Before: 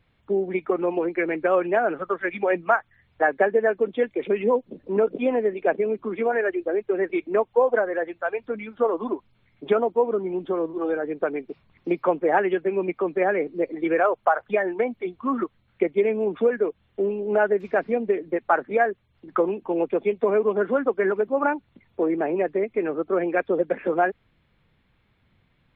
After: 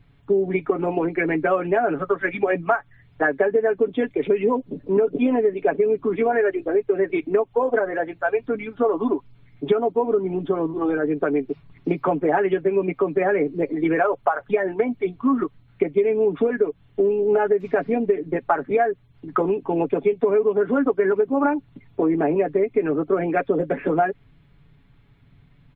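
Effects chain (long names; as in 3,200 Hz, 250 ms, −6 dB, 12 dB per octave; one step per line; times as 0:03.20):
low-shelf EQ 320 Hz +10.5 dB
notch filter 540 Hz, Q 12
comb filter 7.1 ms, depth 58%
downward compressor, threshold −17 dBFS, peak gain reduction 9 dB
level +1.5 dB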